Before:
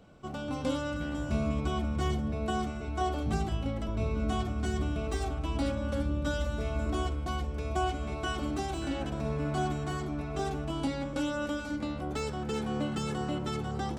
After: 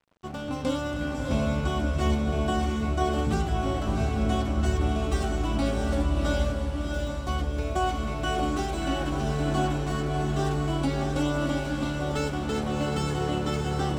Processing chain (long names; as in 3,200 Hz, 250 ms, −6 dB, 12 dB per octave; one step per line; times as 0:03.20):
0:06.52–0:07.27: inverse Chebyshev high-pass filter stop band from 2,600 Hz
dead-zone distortion −51 dBFS
feedback delay with all-pass diffusion 674 ms, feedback 46%, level −3 dB
level +4 dB